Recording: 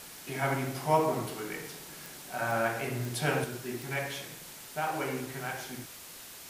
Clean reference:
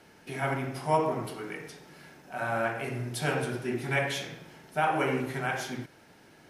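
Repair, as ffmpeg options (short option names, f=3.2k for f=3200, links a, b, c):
-af "adeclick=t=4,afwtdn=0.005,asetnsamples=n=441:p=0,asendcmd='3.44 volume volume 6dB',volume=0dB"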